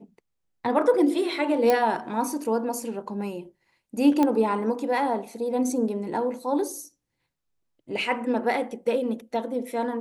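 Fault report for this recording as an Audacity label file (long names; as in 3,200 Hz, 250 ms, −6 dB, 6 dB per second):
1.700000	1.700000	click −9 dBFS
4.230000	4.230000	click −11 dBFS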